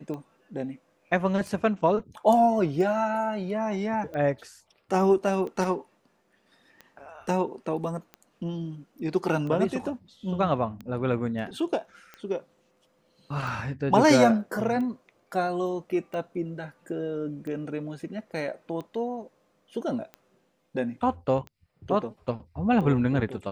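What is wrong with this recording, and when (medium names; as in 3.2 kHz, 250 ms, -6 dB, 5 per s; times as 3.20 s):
tick 45 rpm -26 dBFS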